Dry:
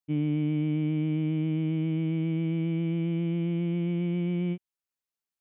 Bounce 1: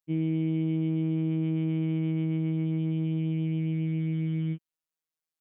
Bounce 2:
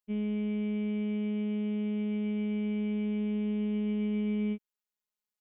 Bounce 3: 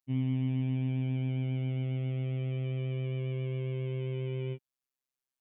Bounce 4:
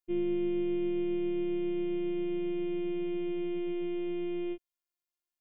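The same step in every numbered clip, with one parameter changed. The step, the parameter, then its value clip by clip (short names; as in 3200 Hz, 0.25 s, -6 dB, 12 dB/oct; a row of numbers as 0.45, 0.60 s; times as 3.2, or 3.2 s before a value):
robotiser, frequency: 160, 210, 130, 350 Hz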